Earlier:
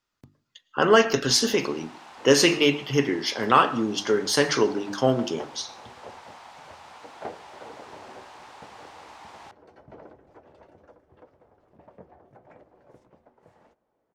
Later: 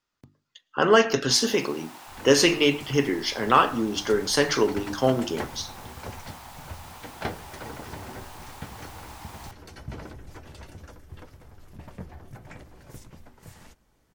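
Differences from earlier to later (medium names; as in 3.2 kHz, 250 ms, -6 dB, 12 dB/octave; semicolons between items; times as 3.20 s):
speech: send -7.5 dB; first sound: remove distance through air 94 m; second sound: remove band-pass filter 580 Hz, Q 1.4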